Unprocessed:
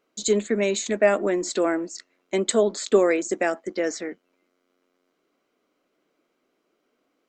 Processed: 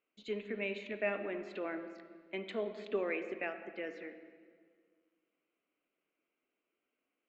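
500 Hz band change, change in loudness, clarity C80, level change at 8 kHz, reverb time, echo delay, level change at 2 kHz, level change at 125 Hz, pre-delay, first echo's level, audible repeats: -16.5 dB, -16.5 dB, 10.5 dB, under -40 dB, 1.8 s, no echo, -10.5 dB, no reading, 34 ms, no echo, no echo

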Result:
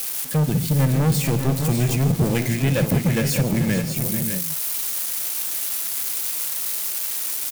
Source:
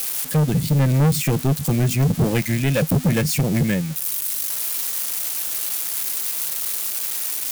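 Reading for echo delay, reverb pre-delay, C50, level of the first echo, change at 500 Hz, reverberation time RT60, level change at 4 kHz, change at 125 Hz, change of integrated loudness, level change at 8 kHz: 58 ms, no reverb, no reverb, -14.5 dB, -1.0 dB, no reverb, -1.0 dB, -1.0 dB, -1.0 dB, -1.0 dB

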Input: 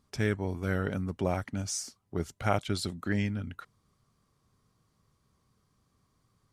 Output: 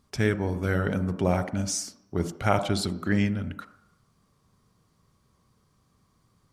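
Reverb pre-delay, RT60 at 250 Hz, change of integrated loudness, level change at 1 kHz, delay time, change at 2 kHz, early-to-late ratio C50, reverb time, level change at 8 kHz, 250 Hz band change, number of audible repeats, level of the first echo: 33 ms, 0.55 s, +5.0 dB, +5.0 dB, no echo, +4.5 dB, 11.5 dB, 0.70 s, +4.5 dB, +6.0 dB, no echo, no echo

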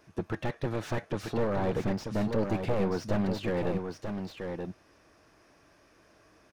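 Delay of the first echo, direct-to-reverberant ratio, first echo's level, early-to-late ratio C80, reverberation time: 935 ms, no reverb, -6.0 dB, no reverb, no reverb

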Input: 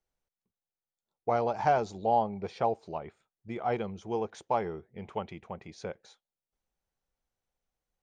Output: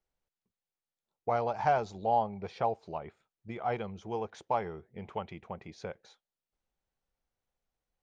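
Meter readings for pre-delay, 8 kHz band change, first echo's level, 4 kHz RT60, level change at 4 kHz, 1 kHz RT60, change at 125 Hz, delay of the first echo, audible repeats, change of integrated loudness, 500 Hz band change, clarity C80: no reverb, no reading, no echo, no reverb, -1.5 dB, no reverb, -1.5 dB, no echo, no echo, -2.0 dB, -2.5 dB, no reverb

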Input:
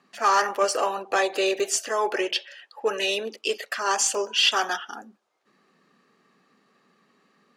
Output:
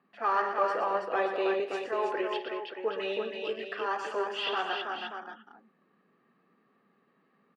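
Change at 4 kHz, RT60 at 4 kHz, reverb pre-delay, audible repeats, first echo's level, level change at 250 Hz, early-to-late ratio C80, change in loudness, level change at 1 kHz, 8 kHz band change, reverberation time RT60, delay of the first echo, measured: -13.0 dB, no reverb, no reverb, 5, -13.5 dB, -4.0 dB, no reverb, -7.5 dB, -5.0 dB, under -30 dB, no reverb, 52 ms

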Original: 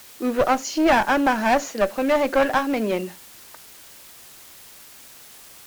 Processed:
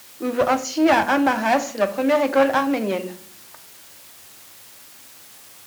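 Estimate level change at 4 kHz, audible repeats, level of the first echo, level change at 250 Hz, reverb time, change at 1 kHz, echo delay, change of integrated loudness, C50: +0.5 dB, no echo, no echo, +1.5 dB, 0.50 s, +0.5 dB, no echo, +1.0 dB, 16.0 dB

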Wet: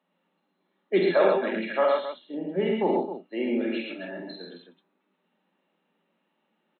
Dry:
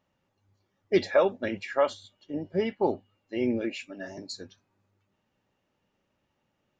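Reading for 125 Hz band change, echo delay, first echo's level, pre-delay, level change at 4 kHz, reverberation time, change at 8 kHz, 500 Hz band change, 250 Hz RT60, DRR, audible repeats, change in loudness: +0.5 dB, 47 ms, -5.0 dB, no reverb, +1.5 dB, no reverb, no reading, +3.0 dB, no reverb, no reverb, 4, +2.5 dB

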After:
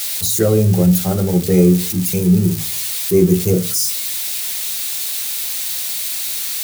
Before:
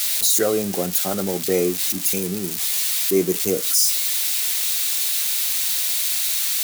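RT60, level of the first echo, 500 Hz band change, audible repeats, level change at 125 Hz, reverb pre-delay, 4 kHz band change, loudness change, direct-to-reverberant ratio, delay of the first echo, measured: 0.45 s, no echo, +5.0 dB, no echo, +18.5 dB, 3 ms, -1.0 dB, +2.5 dB, 7.0 dB, no echo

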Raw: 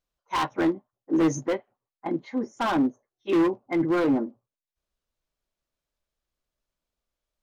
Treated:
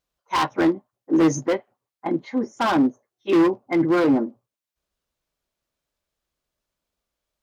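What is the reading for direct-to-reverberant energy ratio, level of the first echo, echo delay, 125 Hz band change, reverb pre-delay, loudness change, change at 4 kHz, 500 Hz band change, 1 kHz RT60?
no reverb, no echo, no echo, +4.0 dB, no reverb, +4.5 dB, +5.0 dB, +4.5 dB, no reverb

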